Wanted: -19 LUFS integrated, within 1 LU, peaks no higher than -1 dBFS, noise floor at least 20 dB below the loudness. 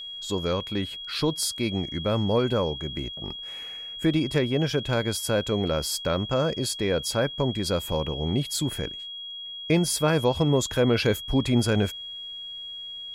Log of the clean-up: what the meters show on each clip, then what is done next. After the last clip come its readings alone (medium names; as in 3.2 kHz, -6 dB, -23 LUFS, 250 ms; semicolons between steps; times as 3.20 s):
steady tone 3.3 kHz; tone level -35 dBFS; loudness -26.5 LUFS; peak level -9.5 dBFS; loudness target -19.0 LUFS
-> band-stop 3.3 kHz, Q 30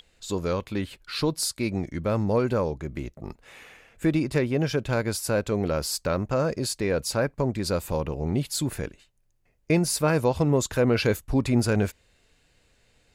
steady tone not found; loudness -26.0 LUFS; peak level -10.0 dBFS; loudness target -19.0 LUFS
-> trim +7 dB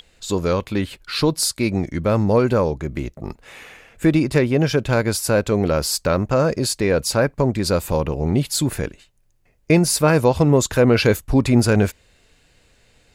loudness -19.0 LUFS; peak level -3.0 dBFS; noise floor -59 dBFS